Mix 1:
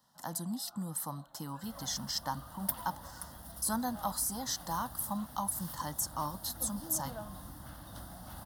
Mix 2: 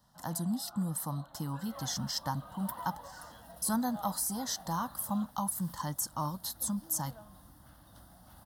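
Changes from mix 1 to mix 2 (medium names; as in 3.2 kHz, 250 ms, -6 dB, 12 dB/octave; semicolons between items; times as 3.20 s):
speech: remove high-pass 300 Hz 6 dB/octave; first sound +5.5 dB; second sound -9.0 dB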